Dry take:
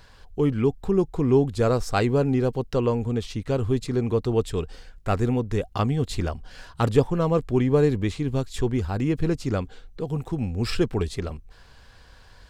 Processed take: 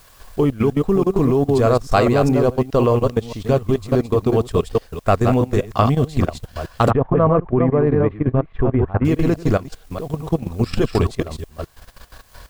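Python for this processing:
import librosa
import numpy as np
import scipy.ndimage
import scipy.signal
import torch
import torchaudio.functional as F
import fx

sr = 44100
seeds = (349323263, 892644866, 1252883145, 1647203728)

y = fx.reverse_delay(x, sr, ms=208, wet_db=-4.5)
y = fx.level_steps(y, sr, step_db=12)
y = fx.quant_dither(y, sr, seeds[0], bits=10, dither='triangular')
y = fx.lowpass(y, sr, hz=2000.0, slope=24, at=(6.9, 9.05))
y = fx.transient(y, sr, attack_db=1, sustain_db=-7)
y = fx.small_body(y, sr, hz=(650.0, 1100.0), ring_ms=20, db=7)
y = F.gain(torch.from_numpy(y), 8.5).numpy()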